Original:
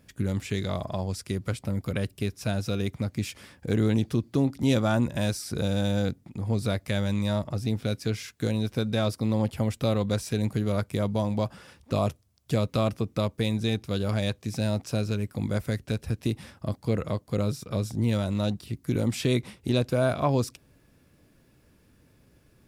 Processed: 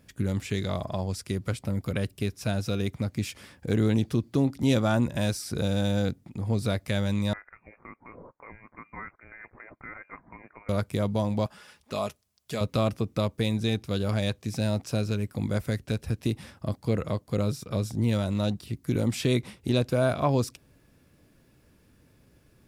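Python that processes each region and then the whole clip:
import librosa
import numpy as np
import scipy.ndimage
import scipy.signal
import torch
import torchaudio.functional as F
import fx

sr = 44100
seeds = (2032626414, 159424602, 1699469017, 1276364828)

y = fx.chain(x, sr, fx.highpass(hz=1500.0, slope=12),
    fx.freq_invert(carrier_hz=2600), at=(7.33, 10.69))
y = fx.chain(y, sr, fx.low_shelf(hz=440.0, db=-11.5),
    fx.comb(ms=4.8, depth=0.34), at=(11.46, 12.61))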